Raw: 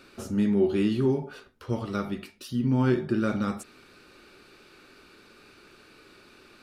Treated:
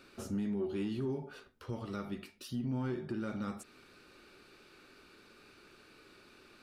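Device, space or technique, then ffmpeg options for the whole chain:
soft clipper into limiter: -af "asoftclip=type=tanh:threshold=-14.5dB,alimiter=limit=-23.5dB:level=0:latency=1:release=258,volume=-5.5dB"

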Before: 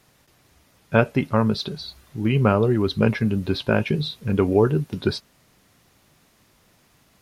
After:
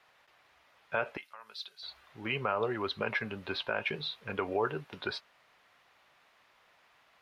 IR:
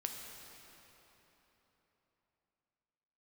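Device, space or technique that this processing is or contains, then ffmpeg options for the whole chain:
DJ mixer with the lows and highs turned down: -filter_complex "[0:a]acrossover=split=580 3600:gain=0.0794 1 0.112[a][b][c];[a][b][c]amix=inputs=3:normalize=0,alimiter=limit=-19.5dB:level=0:latency=1:release=84,asettb=1/sr,asplit=3[d][e][f];[d]atrim=end=1.174[g];[e]atrim=start=1.17:end=1.83,asetpts=PTS-STARTPTS,afade=t=in:d=0.004:c=qsin,afade=t=out:st=0.656:d=0.004:c=qsin,aderivative[h];[f]atrim=start=1.826[i];[g][h]acrossfade=d=0.004:c1=hsin:c2=qsin[j];[j][i]acrossfade=d=0.004:c1=qsin:c2=hsin"

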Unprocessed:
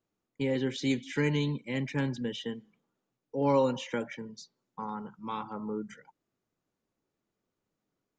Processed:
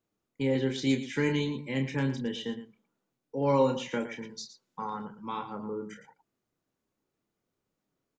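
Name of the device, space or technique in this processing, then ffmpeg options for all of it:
slapback doubling: -filter_complex "[0:a]asplit=3[a][b][c];[b]adelay=30,volume=-7dB[d];[c]adelay=114,volume=-12dB[e];[a][d][e]amix=inputs=3:normalize=0,asettb=1/sr,asplit=3[f][g][h];[f]atrim=end=4.224[i];[g]atrim=start=4.22:end=5.05,asetpts=PTS-STARTPTS,afade=t=in:d=0.004:c=qsin,afade=t=out:st=0.826:d=0.004:c=qsin,equalizer=f=4.5k:t=o:w=3:g=6.5[j];[h]atrim=start=5.046[k];[i][j]acrossfade=d=0.004:c1=hsin:c2=qsin[l];[l][k]acrossfade=d=0.004:c1=qsin:c2=hsin"

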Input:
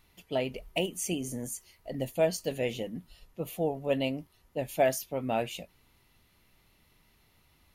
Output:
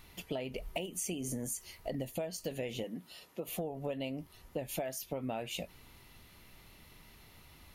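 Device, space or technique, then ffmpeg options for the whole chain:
serial compression, peaks first: -filter_complex "[0:a]acompressor=threshold=-38dB:ratio=6,acompressor=threshold=-44dB:ratio=2.5,asettb=1/sr,asplit=3[a][b][c];[a]atrim=end=2.844[d];[b]atrim=start=2.84:end=3.48,asetpts=PTS-STARTPTS,afade=t=in:d=0.004:c=qsin,afade=t=out:st=0.636:d=0.004:c=qsin,highpass=240[e];[c]atrim=start=3.476[f];[d][e]acrossfade=d=0.004:c1=hsin:c2=qsin[g];[g][f]acrossfade=d=0.004:c1=qsin:c2=hsin,volume=8dB"

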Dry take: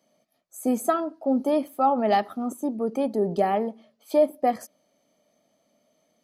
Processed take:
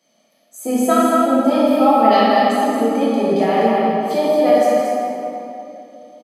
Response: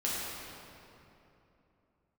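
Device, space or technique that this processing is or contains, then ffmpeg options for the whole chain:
stadium PA: -filter_complex "[0:a]highpass=140,equalizer=f=3.4k:t=o:w=2.6:g=8,aecho=1:1:157.4|224.5:0.282|0.501[a];[1:a]atrim=start_sample=2205[b];[a][b]afir=irnorm=-1:irlink=0"

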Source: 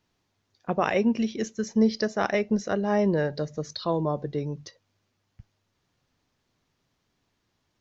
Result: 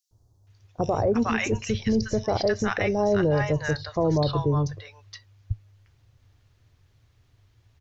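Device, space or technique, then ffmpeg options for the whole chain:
car stereo with a boomy subwoofer: -filter_complex "[0:a]asplit=3[a][b][c];[a]afade=t=out:st=1.4:d=0.02[d];[b]asubboost=boost=4.5:cutoff=190,afade=t=in:st=1.4:d=0.02,afade=t=out:st=2.13:d=0.02[e];[c]afade=t=in:st=2.13:d=0.02[f];[d][e][f]amix=inputs=3:normalize=0,lowshelf=f=140:t=q:w=3:g=10,acrossover=split=940|5400[g][h][i];[g]adelay=110[j];[h]adelay=470[k];[j][k][i]amix=inputs=3:normalize=0,alimiter=limit=-21.5dB:level=0:latency=1:release=18,volume=6.5dB"

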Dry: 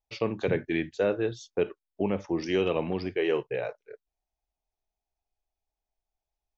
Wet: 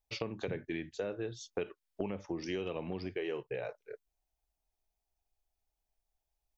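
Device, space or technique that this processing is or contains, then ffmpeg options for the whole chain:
ASMR close-microphone chain: -filter_complex "[0:a]lowshelf=f=120:g=4.5,acompressor=threshold=-34dB:ratio=5,highshelf=f=6.2k:g=5.5,asettb=1/sr,asplit=3[a][b][c];[a]atrim=end=1.554[d];[b]atrim=start=1.55:end=2.11,asetpts=PTS-STARTPTS,afade=t=in:d=0.004:c=qsin,afade=t=out:st=0.556:d=0.004:c=qsin,equalizer=f=2.7k:w=0.35:g=5.5[e];[c]atrim=start=2.106[f];[d][e]acrossfade=d=0.004:c1=hsin:c2=qsin[g];[g][f]acrossfade=d=0.004:c1=qsin:c2=hsin,volume=-1dB"

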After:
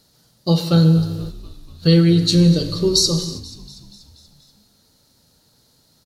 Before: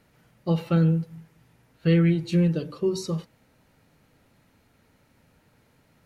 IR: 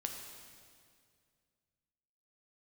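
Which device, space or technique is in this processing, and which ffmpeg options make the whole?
keyed gated reverb: -filter_complex "[0:a]highshelf=f=3.2k:t=q:w=3:g=10.5,asplit=3[a][b][c];[1:a]atrim=start_sample=2205[d];[b][d]afir=irnorm=-1:irlink=0[e];[c]apad=whole_len=266834[f];[e][f]sidechaingate=range=-33dB:threshold=-50dB:ratio=16:detection=peak,volume=2.5dB[g];[a][g]amix=inputs=2:normalize=0,asplit=7[h][i][j][k][l][m][n];[i]adelay=241,afreqshift=-62,volume=-19dB[o];[j]adelay=482,afreqshift=-124,volume=-23dB[p];[k]adelay=723,afreqshift=-186,volume=-27dB[q];[l]adelay=964,afreqshift=-248,volume=-31dB[r];[m]adelay=1205,afreqshift=-310,volume=-35.1dB[s];[n]adelay=1446,afreqshift=-372,volume=-39.1dB[t];[h][o][p][q][r][s][t]amix=inputs=7:normalize=0"

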